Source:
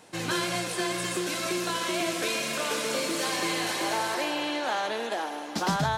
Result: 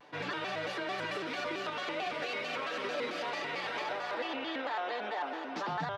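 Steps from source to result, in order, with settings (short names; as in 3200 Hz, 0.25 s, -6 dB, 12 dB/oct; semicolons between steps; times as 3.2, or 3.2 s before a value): HPF 450 Hz 6 dB/oct; air absorption 290 m; limiter -29 dBFS, peak gain reduction 9.5 dB; comb 7.4 ms, depth 67%; shaped vibrato square 4.5 Hz, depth 160 cents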